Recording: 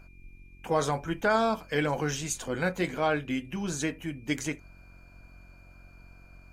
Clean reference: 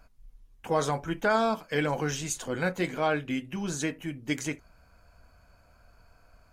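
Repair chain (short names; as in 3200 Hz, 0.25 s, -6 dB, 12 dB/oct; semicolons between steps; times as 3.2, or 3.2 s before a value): de-hum 45.5 Hz, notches 8; notch 2400 Hz, Q 30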